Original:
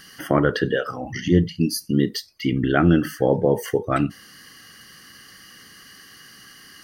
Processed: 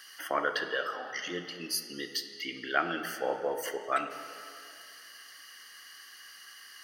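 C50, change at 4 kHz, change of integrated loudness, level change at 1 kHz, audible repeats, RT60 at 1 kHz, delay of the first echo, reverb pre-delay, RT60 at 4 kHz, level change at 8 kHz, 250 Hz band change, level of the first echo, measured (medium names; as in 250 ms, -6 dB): 8.5 dB, -4.0 dB, -12.0 dB, -5.5 dB, no echo, 2.4 s, no echo, 10 ms, 2.1 s, -4.5 dB, -22.0 dB, no echo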